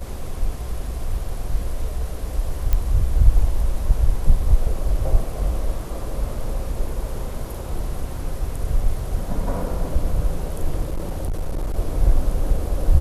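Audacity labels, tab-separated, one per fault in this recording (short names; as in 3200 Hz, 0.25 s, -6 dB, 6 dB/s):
2.730000	2.730000	pop -8 dBFS
10.880000	11.760000	clipped -20 dBFS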